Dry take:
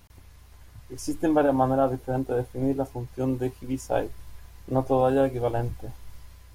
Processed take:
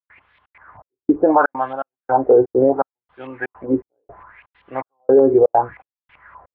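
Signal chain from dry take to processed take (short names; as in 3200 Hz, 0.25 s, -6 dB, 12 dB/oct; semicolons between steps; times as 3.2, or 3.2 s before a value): wah 0.71 Hz 360–3500 Hz, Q 4.4; step gate ".xxxx.xxx.." 165 bpm -60 dB; LFO low-pass saw up 5.2 Hz 980–2300 Hz; tape spacing loss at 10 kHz 37 dB; maximiser +28.5 dB; gain -3.5 dB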